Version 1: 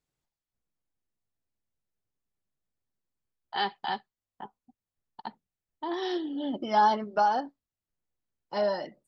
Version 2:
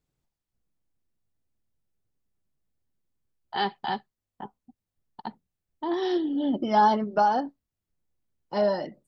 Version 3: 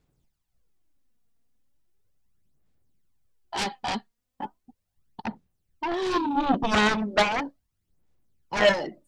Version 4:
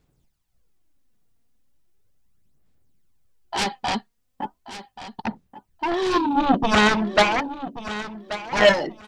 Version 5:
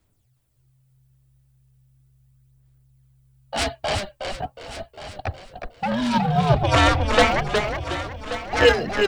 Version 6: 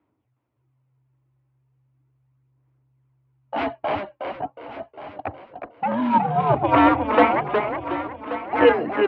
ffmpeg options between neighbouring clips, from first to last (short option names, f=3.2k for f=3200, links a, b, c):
-af "lowshelf=f=460:g=9"
-af "aphaser=in_gain=1:out_gain=1:delay=4.3:decay=0.53:speed=0.37:type=sinusoidal,aeval=exprs='0.335*(cos(1*acos(clip(val(0)/0.335,-1,1)))-cos(1*PI/2))+0.15*(cos(7*acos(clip(val(0)/0.335,-1,1)))-cos(7*PI/2))':c=same,volume=-2.5dB"
-af "aecho=1:1:1132|2264:0.211|0.038,volume=4.5dB"
-filter_complex "[0:a]afreqshift=-130,asplit=5[a][b][c][d][e];[b]adelay=364,afreqshift=-70,volume=-5.5dB[f];[c]adelay=728,afreqshift=-140,volume=-14.9dB[g];[d]adelay=1092,afreqshift=-210,volume=-24.2dB[h];[e]adelay=1456,afreqshift=-280,volume=-33.6dB[i];[a][f][g][h][i]amix=inputs=5:normalize=0,aexciter=amount=1.3:drive=6.8:freq=8.3k"
-af "highpass=170,equalizer=f=180:t=q:w=4:g=-6,equalizer=f=300:t=q:w=4:g=9,equalizer=f=970:t=q:w=4:g=7,equalizer=f=1.7k:t=q:w=4:g=-5,lowpass=f=2.3k:w=0.5412,lowpass=f=2.3k:w=1.3066"